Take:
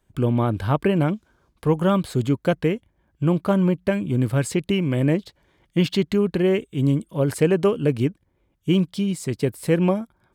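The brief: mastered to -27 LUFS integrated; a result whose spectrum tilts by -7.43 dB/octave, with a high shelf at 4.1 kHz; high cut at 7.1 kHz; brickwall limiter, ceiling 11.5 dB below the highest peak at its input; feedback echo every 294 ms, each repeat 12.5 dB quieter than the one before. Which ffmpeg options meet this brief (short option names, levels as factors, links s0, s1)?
-af "lowpass=7100,highshelf=f=4100:g=-4,alimiter=limit=0.119:level=0:latency=1,aecho=1:1:294|588|882:0.237|0.0569|0.0137,volume=1.06"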